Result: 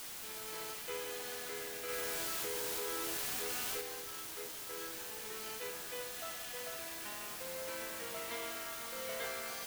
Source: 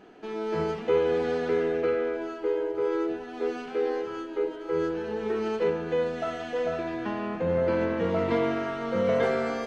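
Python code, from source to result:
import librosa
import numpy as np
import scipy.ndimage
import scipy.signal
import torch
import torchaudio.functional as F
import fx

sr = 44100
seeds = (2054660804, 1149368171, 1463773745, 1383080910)

p1 = np.diff(x, prepend=0.0)
p2 = fx.quant_dither(p1, sr, seeds[0], bits=6, dither='triangular')
p3 = p1 + (p2 * 10.0 ** (-10.0 / 20.0))
y = fx.env_flatten(p3, sr, amount_pct=100, at=(1.88, 3.8), fade=0.02)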